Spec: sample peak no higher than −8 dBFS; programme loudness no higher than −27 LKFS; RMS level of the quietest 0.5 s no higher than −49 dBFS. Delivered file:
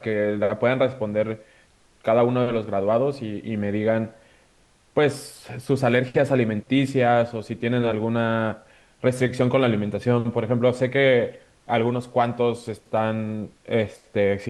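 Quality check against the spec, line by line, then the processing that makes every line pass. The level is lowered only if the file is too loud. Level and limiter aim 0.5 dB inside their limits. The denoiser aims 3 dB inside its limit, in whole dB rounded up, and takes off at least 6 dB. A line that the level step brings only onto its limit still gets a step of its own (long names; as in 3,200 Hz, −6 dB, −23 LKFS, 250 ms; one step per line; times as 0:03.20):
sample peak −6.5 dBFS: out of spec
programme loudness −23.0 LKFS: out of spec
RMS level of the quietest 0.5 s −59 dBFS: in spec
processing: level −4.5 dB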